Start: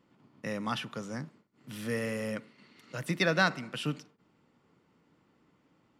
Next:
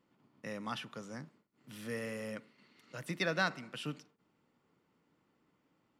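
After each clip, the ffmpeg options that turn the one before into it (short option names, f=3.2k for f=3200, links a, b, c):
-af "equalizer=f=81:w=0.42:g=-3,volume=-6dB"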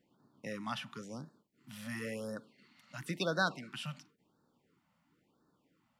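-af "afftfilt=real='re*(1-between(b*sr/1024,350*pow(2600/350,0.5+0.5*sin(2*PI*0.96*pts/sr))/1.41,350*pow(2600/350,0.5+0.5*sin(2*PI*0.96*pts/sr))*1.41))':imag='im*(1-between(b*sr/1024,350*pow(2600/350,0.5+0.5*sin(2*PI*0.96*pts/sr))/1.41,350*pow(2600/350,0.5+0.5*sin(2*PI*0.96*pts/sr))*1.41))':win_size=1024:overlap=0.75,volume=1dB"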